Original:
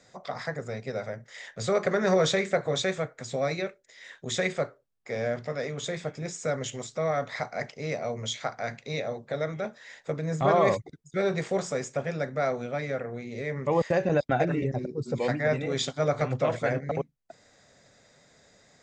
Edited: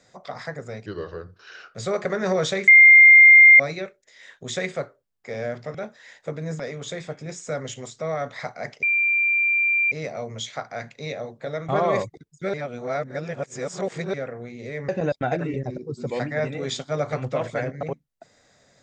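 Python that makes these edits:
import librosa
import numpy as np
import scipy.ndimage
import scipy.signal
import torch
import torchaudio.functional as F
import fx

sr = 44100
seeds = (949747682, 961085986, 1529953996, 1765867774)

y = fx.edit(x, sr, fx.speed_span(start_s=0.86, length_s=0.7, speed=0.79),
    fx.bleep(start_s=2.49, length_s=0.92, hz=2110.0, db=-6.5),
    fx.insert_tone(at_s=7.79, length_s=1.09, hz=2370.0, db=-17.5),
    fx.move(start_s=9.56, length_s=0.85, to_s=5.56),
    fx.reverse_span(start_s=11.26, length_s=1.6),
    fx.cut(start_s=13.61, length_s=0.36), tone=tone)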